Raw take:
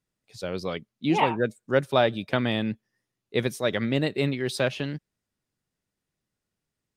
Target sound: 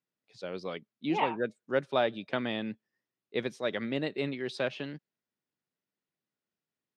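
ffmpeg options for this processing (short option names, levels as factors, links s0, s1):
-af "highpass=190,lowpass=4700,volume=0.501"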